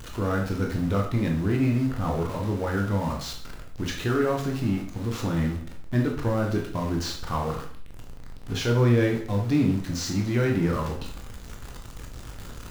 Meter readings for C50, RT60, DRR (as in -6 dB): 6.0 dB, 0.55 s, 0.0 dB